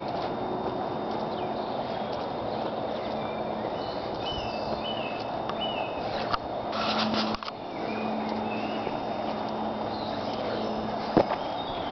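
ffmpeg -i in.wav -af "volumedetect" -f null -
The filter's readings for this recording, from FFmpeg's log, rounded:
mean_volume: -30.6 dB
max_volume: -9.3 dB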